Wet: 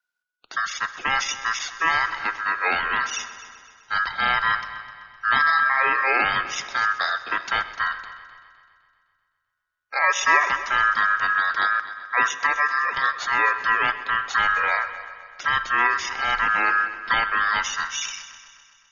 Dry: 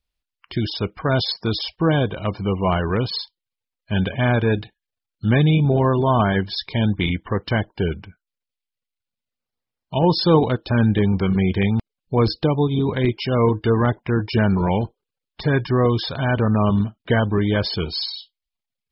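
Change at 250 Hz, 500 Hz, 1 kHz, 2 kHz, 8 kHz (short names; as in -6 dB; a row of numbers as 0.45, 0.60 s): -24.5 dB, -15.5 dB, +5.0 dB, +10.5 dB, n/a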